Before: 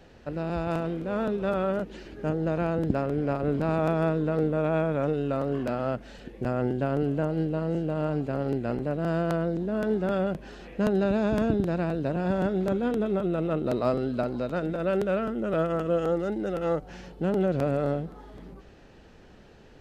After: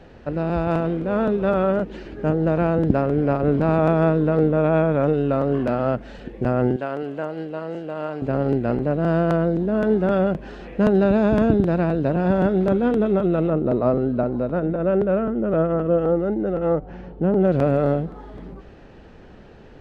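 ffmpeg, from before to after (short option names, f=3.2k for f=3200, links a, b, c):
-filter_complex "[0:a]asettb=1/sr,asplit=3[a][b][c];[a]atrim=end=6.764[d];[b]atrim=start=6.76:end=8.22,asetpts=PTS-STARTPTS,afade=t=in:d=0.004:c=qsin,afade=t=out:st=1.456:d=0.004:c=qsin,highpass=f=950:p=1[e];[c]atrim=start=8.216[f];[d][e]acrossfade=d=0.004:c1=hsin:c2=qsin[g];[g][f]acrossfade=d=0.004:c1=qsin:c2=hsin,asettb=1/sr,asplit=3[h][i][j];[h]atrim=end=13.504[k];[i]atrim=start=13.5:end=17.45,asetpts=PTS-STARTPTS,afade=t=in:d=0.004:c=qsin,afade=t=out:st=3.946:d=0.004:c=qsin,lowpass=f=1k:p=1[l];[j]atrim=start=17.446[m];[k][l]acrossfade=d=0.004:c1=hsin:c2=qsin[n];[n][m]acrossfade=d=0.004:c1=qsin:c2=hsin,lowpass=f=2.2k:p=1,volume=7.5dB"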